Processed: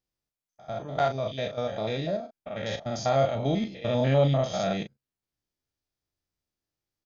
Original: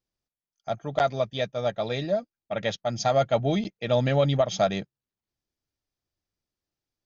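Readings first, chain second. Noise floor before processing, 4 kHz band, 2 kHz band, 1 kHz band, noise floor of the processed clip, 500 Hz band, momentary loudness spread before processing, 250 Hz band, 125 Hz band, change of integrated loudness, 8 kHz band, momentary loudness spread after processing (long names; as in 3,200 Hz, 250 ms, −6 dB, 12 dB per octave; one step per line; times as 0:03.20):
below −85 dBFS, −3.0 dB, −3.0 dB, −2.0 dB, below −85 dBFS, −2.0 dB, 10 LU, −0.5 dB, +0.5 dB, −1.5 dB, can't be measured, 12 LU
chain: spectrum averaged block by block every 100 ms
double-tracking delay 37 ms −8.5 dB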